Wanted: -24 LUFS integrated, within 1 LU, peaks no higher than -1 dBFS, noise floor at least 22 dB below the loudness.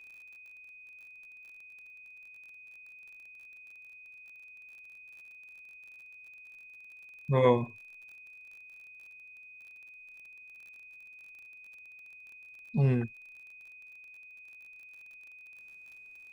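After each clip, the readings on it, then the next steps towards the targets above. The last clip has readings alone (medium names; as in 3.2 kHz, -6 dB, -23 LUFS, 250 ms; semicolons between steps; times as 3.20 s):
tick rate 36 per s; steady tone 2.5 kHz; tone level -49 dBFS; loudness -29.0 LUFS; peak level -11.5 dBFS; loudness target -24.0 LUFS
-> de-click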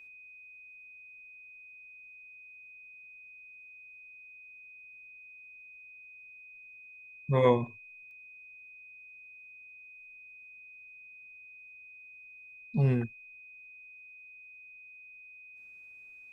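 tick rate 0.061 per s; steady tone 2.5 kHz; tone level -49 dBFS
-> band-stop 2.5 kHz, Q 30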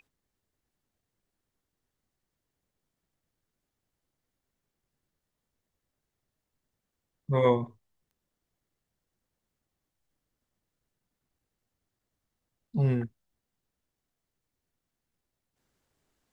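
steady tone not found; loudness -28.0 LUFS; peak level -11.5 dBFS; loudness target -24.0 LUFS
-> trim +4 dB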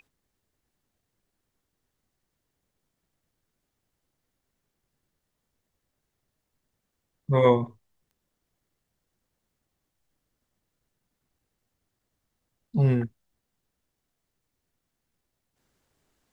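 loudness -24.0 LUFS; peak level -7.5 dBFS; noise floor -82 dBFS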